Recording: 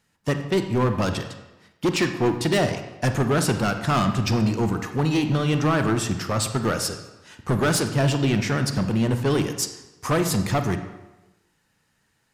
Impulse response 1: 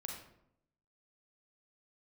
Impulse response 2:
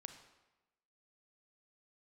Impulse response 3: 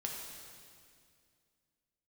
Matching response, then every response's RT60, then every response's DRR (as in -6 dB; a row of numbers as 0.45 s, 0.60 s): 2; 0.75 s, 1.1 s, 2.2 s; 0.0 dB, 7.0 dB, -1.0 dB